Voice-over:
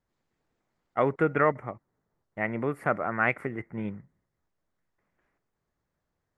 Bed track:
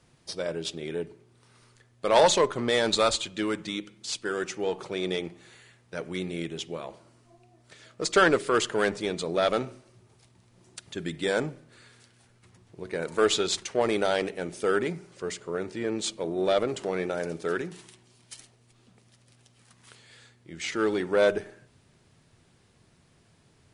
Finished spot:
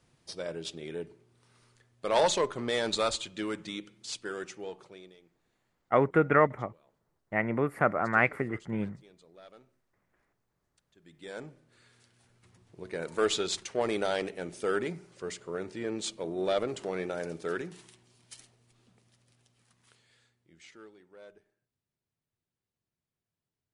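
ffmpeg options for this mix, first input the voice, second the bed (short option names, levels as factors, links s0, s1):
-filter_complex "[0:a]adelay=4950,volume=1.12[s0];[1:a]volume=8.41,afade=t=out:st=4.15:d=0.99:silence=0.0707946,afade=t=in:st=11.01:d=1.36:silence=0.0630957,afade=t=out:st=18.53:d=2.4:silence=0.0530884[s1];[s0][s1]amix=inputs=2:normalize=0"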